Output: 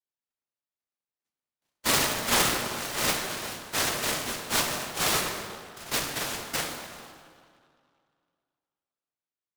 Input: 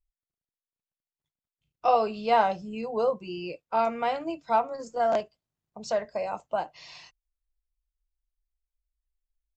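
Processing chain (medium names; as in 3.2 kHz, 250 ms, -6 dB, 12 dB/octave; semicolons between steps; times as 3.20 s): noise-vocoded speech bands 1; plate-style reverb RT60 2.3 s, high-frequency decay 0.5×, DRR -0.5 dB; delay time shaken by noise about 1.8 kHz, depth 0.077 ms; trim -3.5 dB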